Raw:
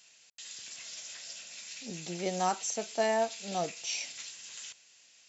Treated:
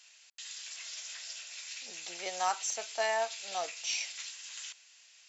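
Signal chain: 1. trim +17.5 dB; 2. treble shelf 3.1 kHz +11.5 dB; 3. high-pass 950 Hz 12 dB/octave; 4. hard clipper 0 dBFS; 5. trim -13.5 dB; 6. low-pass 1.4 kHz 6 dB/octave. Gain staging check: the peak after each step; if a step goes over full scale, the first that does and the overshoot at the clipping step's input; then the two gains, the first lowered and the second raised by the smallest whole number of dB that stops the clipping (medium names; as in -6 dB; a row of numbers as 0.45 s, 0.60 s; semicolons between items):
+1.0 dBFS, +5.5 dBFS, +5.5 dBFS, 0.0 dBFS, -13.5 dBFS, -17.5 dBFS; step 1, 5.5 dB; step 1 +11.5 dB, step 5 -7.5 dB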